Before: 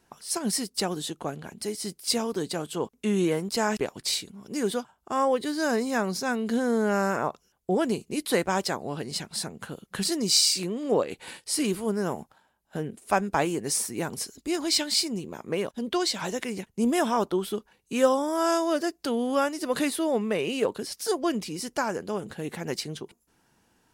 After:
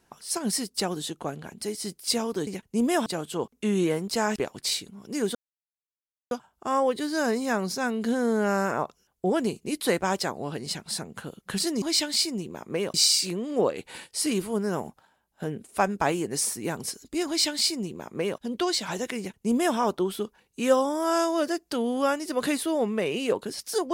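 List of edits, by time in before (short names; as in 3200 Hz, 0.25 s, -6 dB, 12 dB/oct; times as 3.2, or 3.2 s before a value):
4.76 insert silence 0.96 s
14.6–15.72 copy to 10.27
16.51–17.1 copy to 2.47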